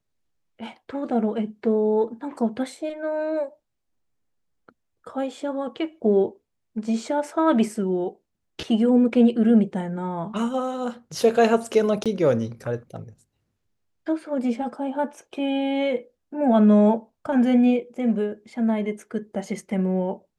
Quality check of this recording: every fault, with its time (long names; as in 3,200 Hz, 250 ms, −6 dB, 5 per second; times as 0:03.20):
0:12.04–0:12.06: drop-out 17 ms